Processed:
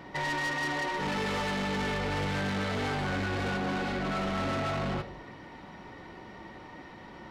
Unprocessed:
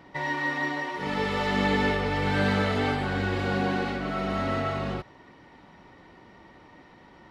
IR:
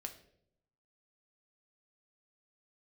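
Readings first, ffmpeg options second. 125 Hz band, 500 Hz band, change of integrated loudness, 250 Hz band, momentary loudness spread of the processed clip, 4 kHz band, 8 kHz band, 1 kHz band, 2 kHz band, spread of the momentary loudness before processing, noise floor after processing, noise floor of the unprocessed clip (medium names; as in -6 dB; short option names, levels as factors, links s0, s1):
-4.0 dB, -5.0 dB, -4.0 dB, -4.5 dB, 16 LU, -2.0 dB, +3.5 dB, -3.5 dB, -3.5 dB, 6 LU, -48 dBFS, -53 dBFS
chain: -filter_complex "[0:a]asplit=2[s0][s1];[1:a]atrim=start_sample=2205[s2];[s1][s2]afir=irnorm=-1:irlink=0,volume=1.26[s3];[s0][s3]amix=inputs=2:normalize=0,alimiter=limit=0.188:level=0:latency=1:release=344,asoftclip=type=tanh:threshold=0.0376"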